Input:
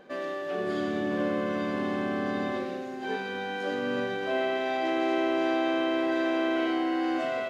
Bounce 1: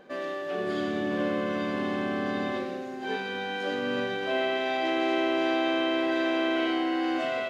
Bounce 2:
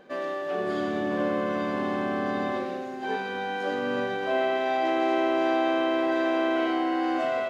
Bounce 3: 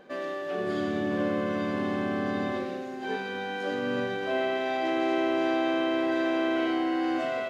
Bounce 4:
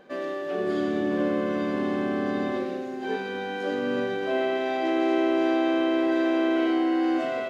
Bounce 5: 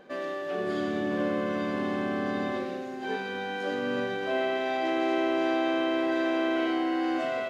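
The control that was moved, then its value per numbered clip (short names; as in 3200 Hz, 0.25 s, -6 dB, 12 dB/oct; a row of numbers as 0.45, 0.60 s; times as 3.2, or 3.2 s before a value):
dynamic EQ, frequency: 3100, 870, 100, 340, 8600 Hz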